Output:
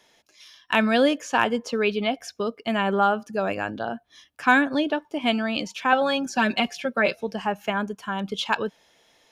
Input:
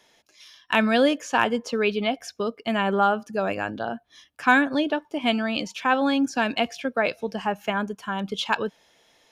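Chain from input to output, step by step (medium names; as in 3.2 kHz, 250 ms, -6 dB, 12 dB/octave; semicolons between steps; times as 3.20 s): 5.92–7.15 s: comb 5.2 ms, depth 79%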